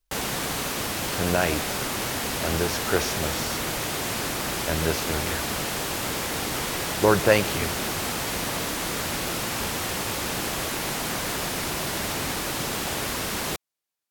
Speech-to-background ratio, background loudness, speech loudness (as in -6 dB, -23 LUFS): 0.5 dB, -27.0 LUFS, -26.5 LUFS